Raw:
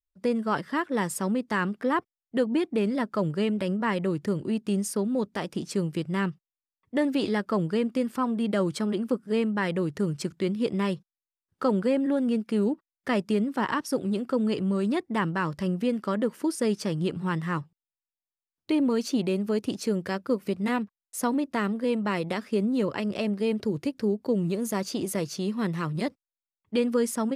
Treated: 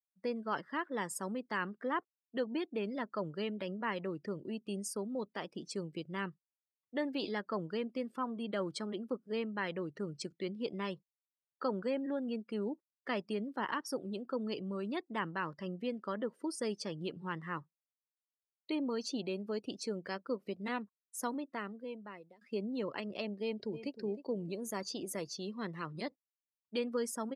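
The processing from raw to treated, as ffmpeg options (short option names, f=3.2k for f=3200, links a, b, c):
-filter_complex "[0:a]asplit=2[a][b];[b]afade=t=in:st=23.41:d=0.01,afade=t=out:st=23.92:d=0.01,aecho=0:1:310|620|930|1240:0.237137|0.106712|0.0480203|0.0216091[c];[a][c]amix=inputs=2:normalize=0,asplit=2[d][e];[d]atrim=end=22.41,asetpts=PTS-STARTPTS,afade=t=out:st=21.19:d=1.22:silence=0.0668344[f];[e]atrim=start=22.41,asetpts=PTS-STARTPTS,afade=t=in:d=0.004:c=hsin:silence=0.0668344[g];[f][g]concat=n=2:v=0:a=1,highpass=f=350:p=1,afftdn=nr=20:nf=-44,equalizer=f=4.4k:t=o:w=0.93:g=4.5,volume=-8dB"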